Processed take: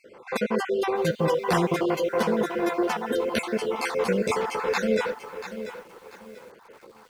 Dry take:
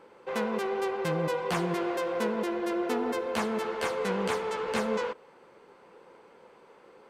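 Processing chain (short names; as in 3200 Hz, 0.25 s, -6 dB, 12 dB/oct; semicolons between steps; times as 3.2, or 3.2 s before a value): random spectral dropouts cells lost 43%; lo-fi delay 0.688 s, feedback 35%, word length 9-bit, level -11 dB; gain +7 dB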